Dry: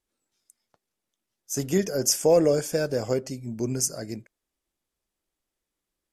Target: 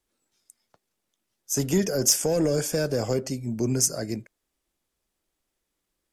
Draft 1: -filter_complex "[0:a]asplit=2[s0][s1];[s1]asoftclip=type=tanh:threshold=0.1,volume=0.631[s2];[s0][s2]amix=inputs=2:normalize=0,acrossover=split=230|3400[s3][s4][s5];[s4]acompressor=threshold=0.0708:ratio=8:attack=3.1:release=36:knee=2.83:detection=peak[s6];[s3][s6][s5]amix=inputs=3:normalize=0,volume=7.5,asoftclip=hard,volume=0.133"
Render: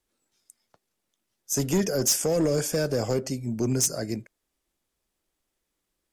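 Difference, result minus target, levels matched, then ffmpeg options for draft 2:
overload inside the chain: distortion +17 dB
-filter_complex "[0:a]asplit=2[s0][s1];[s1]asoftclip=type=tanh:threshold=0.1,volume=0.631[s2];[s0][s2]amix=inputs=2:normalize=0,acrossover=split=230|3400[s3][s4][s5];[s4]acompressor=threshold=0.0708:ratio=8:attack=3.1:release=36:knee=2.83:detection=peak[s6];[s3][s6][s5]amix=inputs=3:normalize=0,volume=3.16,asoftclip=hard,volume=0.316"

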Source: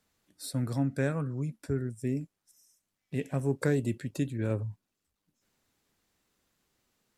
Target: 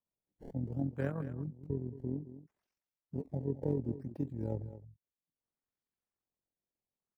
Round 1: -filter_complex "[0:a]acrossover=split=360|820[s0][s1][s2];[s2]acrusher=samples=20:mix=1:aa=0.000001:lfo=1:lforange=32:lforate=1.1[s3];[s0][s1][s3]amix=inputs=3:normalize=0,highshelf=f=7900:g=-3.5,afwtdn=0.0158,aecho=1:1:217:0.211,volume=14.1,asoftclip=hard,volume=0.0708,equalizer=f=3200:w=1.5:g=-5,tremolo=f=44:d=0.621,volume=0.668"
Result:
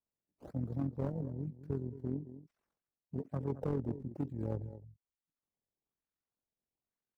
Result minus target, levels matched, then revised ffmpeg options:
overload inside the chain: distortion +33 dB; decimation with a swept rate: distortion +10 dB
-filter_complex "[0:a]acrossover=split=360|820[s0][s1][s2];[s2]acrusher=samples=20:mix=1:aa=0.000001:lfo=1:lforange=32:lforate=0.64[s3];[s0][s1][s3]amix=inputs=3:normalize=0,highshelf=f=7900:g=-3.5,afwtdn=0.0158,aecho=1:1:217:0.211,volume=6.31,asoftclip=hard,volume=0.158,equalizer=f=3200:w=1.5:g=-5,tremolo=f=44:d=0.621,volume=0.668"

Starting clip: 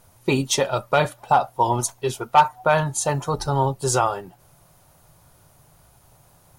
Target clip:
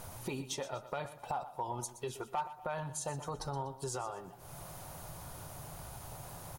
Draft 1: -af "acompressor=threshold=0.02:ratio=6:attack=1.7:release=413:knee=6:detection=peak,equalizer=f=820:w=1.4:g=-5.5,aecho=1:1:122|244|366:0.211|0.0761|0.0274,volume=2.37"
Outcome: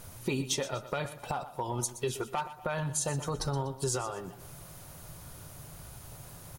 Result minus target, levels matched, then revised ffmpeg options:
compression: peak gain reduction -9 dB; 1 kHz band -5.5 dB
-af "acompressor=threshold=0.00596:ratio=6:attack=1.7:release=413:knee=6:detection=peak,equalizer=f=820:w=1.4:g=2.5,aecho=1:1:122|244|366:0.211|0.0761|0.0274,volume=2.37"

